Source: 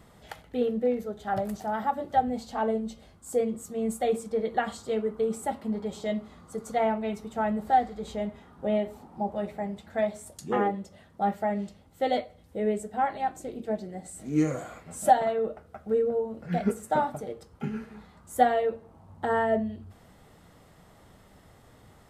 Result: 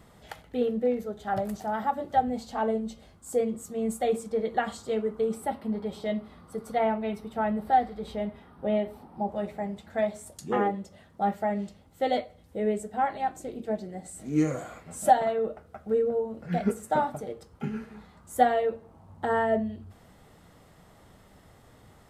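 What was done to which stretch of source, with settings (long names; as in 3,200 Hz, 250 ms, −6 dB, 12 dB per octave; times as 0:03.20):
0:05.34–0:09.29: parametric band 6,900 Hz −13.5 dB 0.36 octaves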